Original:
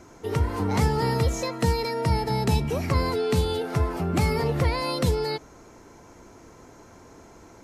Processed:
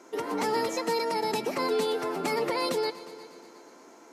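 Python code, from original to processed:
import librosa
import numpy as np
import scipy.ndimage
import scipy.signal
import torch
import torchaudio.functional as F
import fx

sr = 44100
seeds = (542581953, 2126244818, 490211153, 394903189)

y = scipy.signal.sosfilt(scipy.signal.butter(4, 260.0, 'highpass', fs=sr, output='sos'), x)
y = fx.stretch_vocoder(y, sr, factor=0.54)
y = fx.echo_heads(y, sr, ms=119, heads='all three', feedback_pct=51, wet_db=-22)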